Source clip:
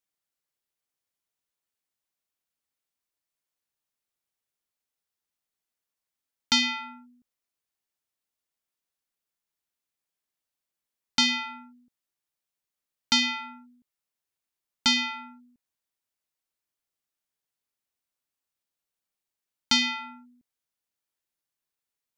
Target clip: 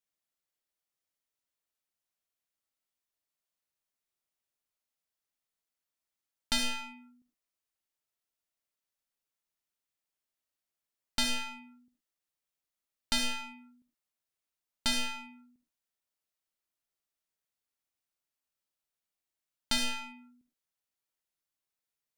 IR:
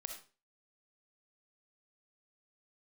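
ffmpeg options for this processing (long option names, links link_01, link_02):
-filter_complex "[0:a]aeval=exprs='clip(val(0),-1,0.0158)':channel_layout=same[link_01];[1:a]atrim=start_sample=2205,afade=type=out:start_time=0.17:duration=0.01,atrim=end_sample=7938[link_02];[link_01][link_02]afir=irnorm=-1:irlink=0"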